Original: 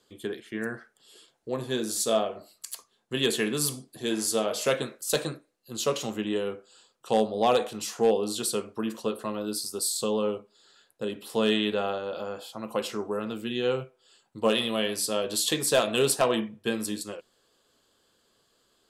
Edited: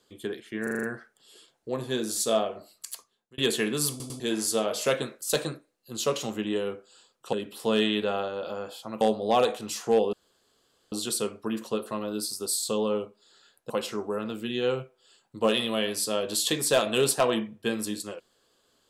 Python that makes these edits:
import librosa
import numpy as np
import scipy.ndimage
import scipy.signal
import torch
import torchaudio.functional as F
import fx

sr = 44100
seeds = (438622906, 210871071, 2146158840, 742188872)

y = fx.edit(x, sr, fx.stutter(start_s=0.63, slice_s=0.04, count=6),
    fx.fade_out_span(start_s=2.71, length_s=0.47),
    fx.stutter_over(start_s=3.7, slice_s=0.1, count=3),
    fx.insert_room_tone(at_s=8.25, length_s=0.79),
    fx.move(start_s=11.03, length_s=1.68, to_s=7.13), tone=tone)